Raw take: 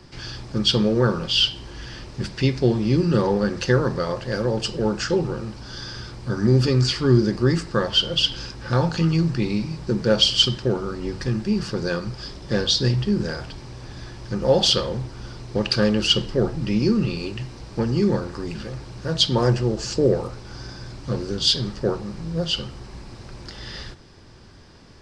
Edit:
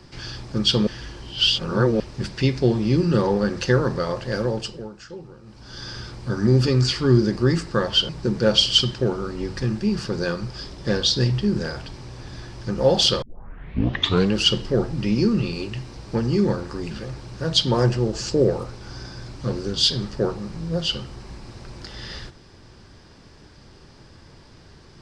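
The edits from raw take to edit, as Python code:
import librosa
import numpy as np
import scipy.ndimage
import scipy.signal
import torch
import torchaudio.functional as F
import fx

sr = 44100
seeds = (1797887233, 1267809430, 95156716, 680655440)

y = fx.edit(x, sr, fx.reverse_span(start_s=0.87, length_s=1.13),
    fx.fade_down_up(start_s=4.42, length_s=1.48, db=-16.5, fade_s=0.47),
    fx.cut(start_s=8.09, length_s=1.64),
    fx.tape_start(start_s=14.86, length_s=1.12), tone=tone)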